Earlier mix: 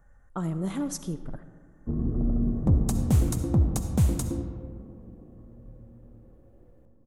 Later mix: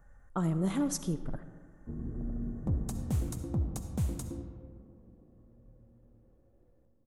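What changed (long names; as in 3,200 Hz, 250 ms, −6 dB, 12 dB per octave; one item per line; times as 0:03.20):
first sound −11.0 dB
second sound −9.5 dB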